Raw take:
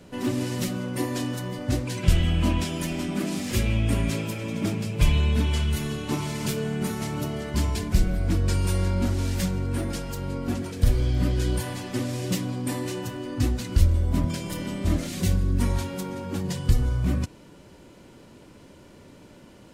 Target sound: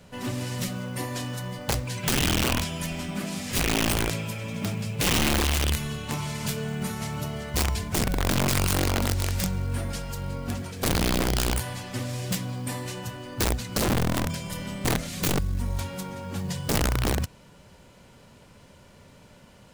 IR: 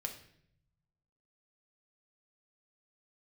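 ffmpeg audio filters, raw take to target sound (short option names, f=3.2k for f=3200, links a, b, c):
-filter_complex "[0:a]equalizer=f=320:t=o:w=0.69:g=-12.5,asettb=1/sr,asplit=3[a][b][c];[a]atrim=end=15.384[d];[b]atrim=start=15.38:end=15.79,asetpts=PTS-STARTPTS,afade=t=in:d=0.004:c=qsin,afade=t=out:st=0.406:d=0.004:c=qsin,acrossover=split=1100|4200[e][f][g];[e]acompressor=threshold=-24dB:ratio=4[h];[f]acompressor=threshold=-54dB:ratio=4[i];[g]acompressor=threshold=-50dB:ratio=4[j];[h][i][j]amix=inputs=3:normalize=0[k];[c]atrim=start=15.786[l];[d][k]acrossfade=d=0.004:c1=hsin:c2=qsin[m];[m][l]acrossfade=d=0.004:c1=qsin:c2=hsin,aeval=exprs='(mod(8.41*val(0)+1,2)-1)/8.41':c=same,acrusher=bits=7:mode=log:mix=0:aa=0.000001"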